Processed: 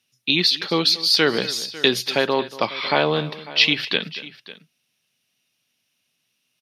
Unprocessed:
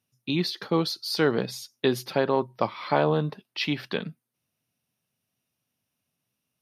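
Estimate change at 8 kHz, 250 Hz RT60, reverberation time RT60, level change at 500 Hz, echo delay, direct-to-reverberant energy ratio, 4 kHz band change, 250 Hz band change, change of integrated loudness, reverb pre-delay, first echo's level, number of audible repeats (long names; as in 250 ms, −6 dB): +10.0 dB, no reverb audible, no reverb audible, +3.0 dB, 234 ms, no reverb audible, +14.0 dB, +2.0 dB, +7.5 dB, no reverb audible, −17.5 dB, 2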